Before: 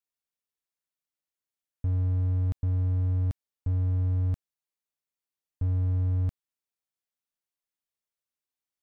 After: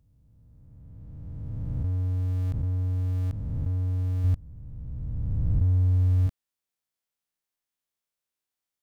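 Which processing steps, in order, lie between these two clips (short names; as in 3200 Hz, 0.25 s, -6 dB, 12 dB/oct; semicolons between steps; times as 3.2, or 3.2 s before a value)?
spectral swells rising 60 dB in 2.96 s; 4.24–6.27 low shelf 100 Hz +10 dB; gain -1 dB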